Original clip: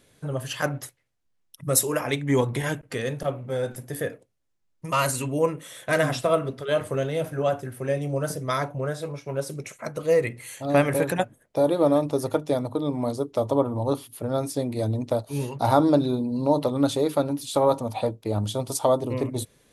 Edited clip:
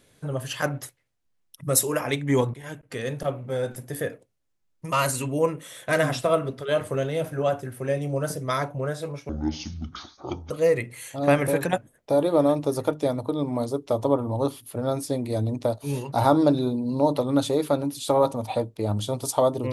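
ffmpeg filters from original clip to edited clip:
-filter_complex "[0:a]asplit=4[s0][s1][s2][s3];[s0]atrim=end=2.54,asetpts=PTS-STARTPTS,afade=t=out:st=2.536:d=0.004:c=hsin:silence=0.1[s4];[s1]atrim=start=2.54:end=9.294,asetpts=PTS-STARTPTS,afade=t=in:d=0.62:silence=0.1[s5];[s2]atrim=start=9.29:end=9.97,asetpts=PTS-STARTPTS,asetrate=24696,aresample=44100[s6];[s3]atrim=start=9.966[s7];[s4][s5]concat=n=2:v=0:a=1[s8];[s8][s6]acrossfade=d=0.004:c1=hsin:c2=hsin[s9];[s9][s7]acrossfade=d=0.004:c1=hsin:c2=hsin"

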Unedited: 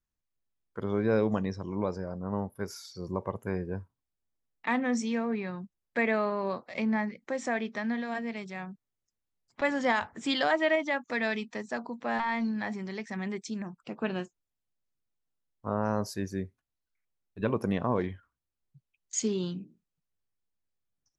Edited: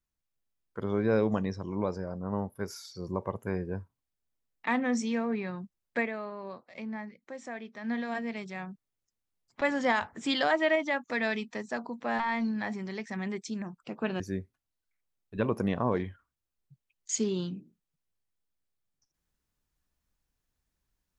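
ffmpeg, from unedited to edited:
-filter_complex "[0:a]asplit=4[s0][s1][s2][s3];[s0]atrim=end=6.1,asetpts=PTS-STARTPTS,afade=t=out:st=5.97:d=0.13:silence=0.334965[s4];[s1]atrim=start=6.1:end=7.8,asetpts=PTS-STARTPTS,volume=0.335[s5];[s2]atrim=start=7.8:end=14.202,asetpts=PTS-STARTPTS,afade=t=in:d=0.13:silence=0.334965[s6];[s3]atrim=start=16.238[s7];[s4][s5][s6]concat=n=3:v=0:a=1[s8];[s8][s7]acrossfade=d=0.004:c1=hsin:c2=hsin"

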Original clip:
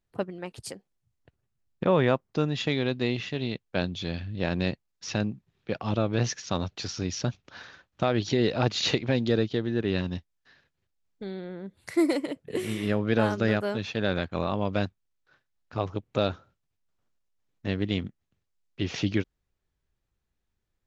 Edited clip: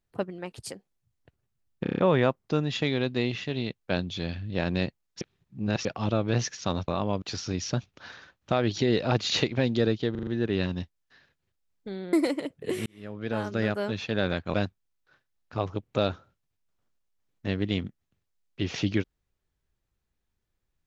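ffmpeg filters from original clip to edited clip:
-filter_complex "[0:a]asplit=17[s0][s1][s2][s3][s4][s5][s6][s7][s8][s9][s10][s11][s12][s13][s14][s15][s16];[s0]atrim=end=1.862[s17];[s1]atrim=start=1.828:end=1.862[s18];[s2]atrim=start=1.828:end=1.862[s19];[s3]atrim=start=1.828:end=1.862[s20];[s4]atrim=start=1.828:end=1.862[s21];[s5]atrim=start=1.828:end=5.062[s22];[s6]atrim=start=5.058:end=5.702,asetpts=PTS-STARTPTS,areverse[s23];[s7]atrim=start=5.698:end=6.732[s24];[s8]atrim=start=14.398:end=14.742[s25];[s9]atrim=start=6.728:end=9.662[s26];[s10]atrim=start=9.618:end=9.662[s27];[s11]atrim=start=9.618:end=9.662[s28];[s12]atrim=start=9.618:end=9.662[s29];[s13]atrim=start=9.618:end=11.482[s30];[s14]atrim=start=11.988:end=12.72,asetpts=PTS-STARTPTS,afade=t=out:st=0.728:d=0.004:c=hsin[s31];[s15]atrim=start=12.72:end=14.402,asetpts=PTS-STARTPTS,afade=t=in:d=1.04[s32];[s16]atrim=start=14.738[s33];[s17][s18]acrossfade=d=0.004:c1=hsin:c2=hsin[s34];[s34][s19]acrossfade=d=0.004:c1=hsin:c2=hsin[s35];[s35][s20]acrossfade=d=0.004:c1=hsin:c2=hsin[s36];[s36][s21]acrossfade=d=0.004:c1=hsin:c2=hsin[s37];[s37][s22]acrossfade=d=0.004:c1=hsin:c2=hsin[s38];[s38][s23]acrossfade=d=0.004:c1=hsin:c2=hsin[s39];[s39][s24]acrossfade=d=0.004:c1=hsin:c2=hsin[s40];[s40][s25]acrossfade=d=0.004:c1=hsin:c2=hsin[s41];[s41][s26]acrossfade=d=0.004:c1=hsin:c2=hsin[s42];[s42][s27]acrossfade=d=0.004:c1=hsin:c2=hsin[s43];[s43][s28]acrossfade=d=0.004:c1=hsin:c2=hsin[s44];[s44][s29]acrossfade=d=0.004:c1=hsin:c2=hsin[s45];[s45][s30]acrossfade=d=0.004:c1=hsin:c2=hsin[s46];[s31][s32]concat=n=2:v=0:a=1[s47];[s46][s47]acrossfade=d=0.004:c1=hsin:c2=hsin[s48];[s48][s33]acrossfade=d=0.004:c1=hsin:c2=hsin"

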